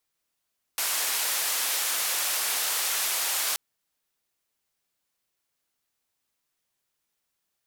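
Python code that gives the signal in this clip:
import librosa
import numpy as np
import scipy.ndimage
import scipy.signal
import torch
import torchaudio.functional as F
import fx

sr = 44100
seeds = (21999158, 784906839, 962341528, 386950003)

y = fx.band_noise(sr, seeds[0], length_s=2.78, low_hz=640.0, high_hz=15000.0, level_db=-27.5)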